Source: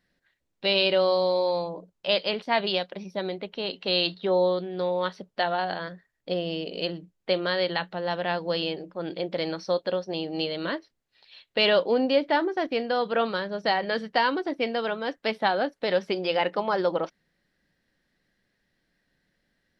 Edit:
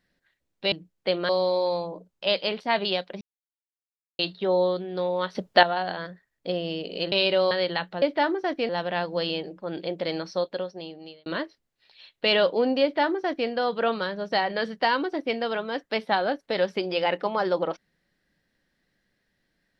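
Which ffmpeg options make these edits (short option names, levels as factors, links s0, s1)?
-filter_complex "[0:a]asplit=12[s0][s1][s2][s3][s4][s5][s6][s7][s8][s9][s10][s11];[s0]atrim=end=0.722[s12];[s1]atrim=start=6.938:end=7.512[s13];[s2]atrim=start=1.108:end=3.03,asetpts=PTS-STARTPTS,afade=t=out:st=1.918:d=0.004:c=hsin[s14];[s3]atrim=start=3.03:end=4.01,asetpts=PTS-STARTPTS,volume=0[s15];[s4]atrim=start=4.01:end=5.172,asetpts=PTS-STARTPTS,afade=t=in:d=0.004:c=hsin[s16];[s5]atrim=start=5.168:end=5.452,asetpts=PTS-STARTPTS,volume=3.16[s17];[s6]atrim=start=5.448:end=6.942[s18];[s7]atrim=start=0.718:end=1.112[s19];[s8]atrim=start=7.508:end=8.022[s20];[s9]atrim=start=12.148:end=12.822[s21];[s10]atrim=start=8.018:end=10.59,asetpts=PTS-STARTPTS,afade=t=out:st=1.592:d=0.98[s22];[s11]atrim=start=10.59,asetpts=PTS-STARTPTS,afade=t=in:d=0.004:c=hsin[s23];[s12][s13]acrossfade=d=0.004:c1=hsin:c2=hsin[s24];[s14][s15][s16]concat=n=3:v=0:a=1[s25];[s24][s25]acrossfade=d=0.004:c1=hsin:c2=hsin[s26];[s26][s17]acrossfade=d=0.004:c1=hsin:c2=hsin[s27];[s27][s18]acrossfade=d=0.004:c1=hsin:c2=hsin[s28];[s28][s19]acrossfade=d=0.004:c1=hsin:c2=hsin[s29];[s29][s20]acrossfade=d=0.004:c1=hsin:c2=hsin[s30];[s30][s21]acrossfade=d=0.004:c1=hsin:c2=hsin[s31];[s22][s23]concat=n=2:v=0:a=1[s32];[s31][s32]acrossfade=d=0.004:c1=hsin:c2=hsin"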